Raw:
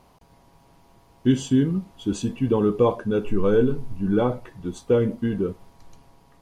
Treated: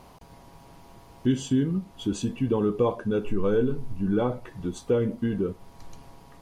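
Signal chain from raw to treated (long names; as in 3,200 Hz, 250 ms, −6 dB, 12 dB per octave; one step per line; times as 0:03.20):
downward compressor 1.5 to 1, threshold −43 dBFS, peak gain reduction 10.5 dB
level +5.5 dB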